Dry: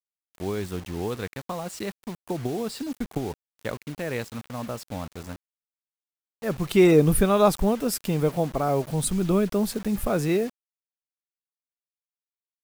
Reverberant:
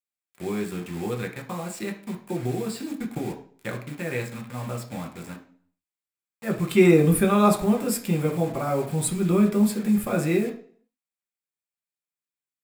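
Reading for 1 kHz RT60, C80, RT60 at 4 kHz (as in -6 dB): 0.50 s, 14.5 dB, 0.45 s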